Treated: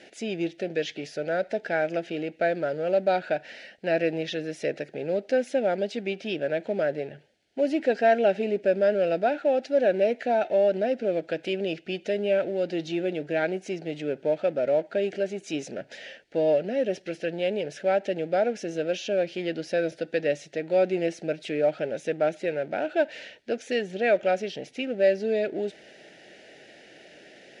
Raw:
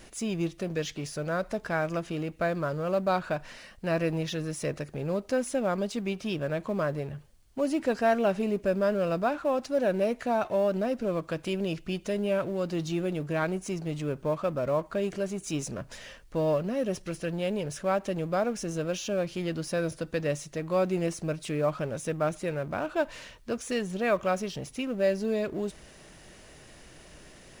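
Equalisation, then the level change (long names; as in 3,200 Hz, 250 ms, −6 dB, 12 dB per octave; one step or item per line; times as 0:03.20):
band-pass filter 330–3,600 Hz
Butterworth band-reject 1,100 Hz, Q 1.5
+5.5 dB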